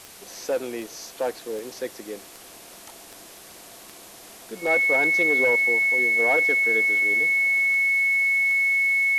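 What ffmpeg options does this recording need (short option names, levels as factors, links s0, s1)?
-af "adeclick=t=4,bandreject=f=2200:w=30,afwtdn=0.0063"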